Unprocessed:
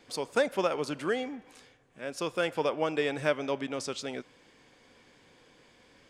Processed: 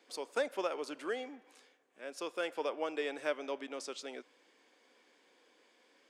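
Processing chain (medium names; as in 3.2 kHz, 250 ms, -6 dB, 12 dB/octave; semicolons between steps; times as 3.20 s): high-pass 280 Hz 24 dB/octave; trim -7 dB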